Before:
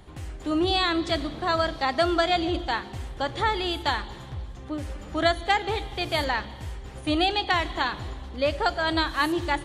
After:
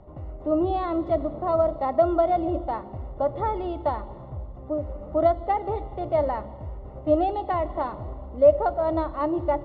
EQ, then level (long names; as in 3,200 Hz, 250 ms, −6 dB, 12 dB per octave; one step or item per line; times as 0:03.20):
Savitzky-Golay smoothing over 65 samples
high-frequency loss of the air 130 metres
parametric band 600 Hz +14 dB 0.22 octaves
0.0 dB